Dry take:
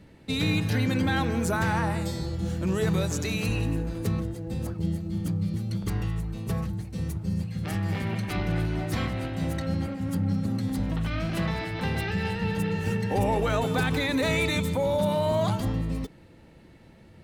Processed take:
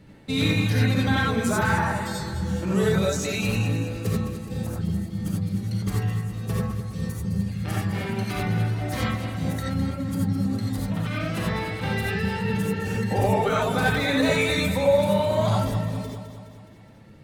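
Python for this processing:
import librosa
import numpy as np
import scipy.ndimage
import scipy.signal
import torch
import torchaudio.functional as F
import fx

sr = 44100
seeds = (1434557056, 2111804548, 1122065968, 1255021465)

p1 = fx.dereverb_blind(x, sr, rt60_s=1.5)
p2 = p1 + fx.echo_feedback(p1, sr, ms=209, feedback_pct=57, wet_db=-10, dry=0)
y = fx.rev_gated(p2, sr, seeds[0], gate_ms=110, shape='rising', drr_db=-3.5)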